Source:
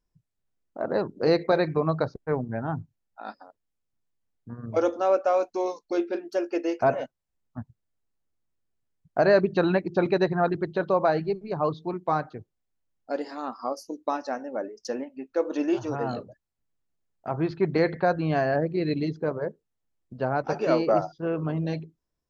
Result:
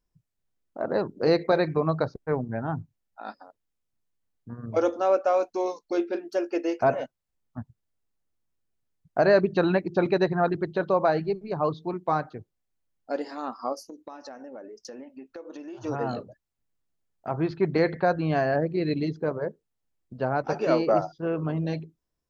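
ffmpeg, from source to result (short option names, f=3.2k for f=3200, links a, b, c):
-filter_complex "[0:a]asettb=1/sr,asplit=3[a][b][c];[a]atrim=end=13.824[d];[b]atrim=start=13.82:end=15.84,asetpts=PTS-STARTPTS,afade=t=in:d=0.004:c=qsin,afade=t=out:st=2.016:d=0.004:c=qsin,acompressor=threshold=-38dB:ratio=6:attack=3.2:release=140:knee=1:detection=peak[e];[c]atrim=start=15.836[f];[d][e]acrossfade=d=0.004:c1=hsin:c2=qsin[g];[g][f]acrossfade=d=0.004:c1=qsin:c2=hsin"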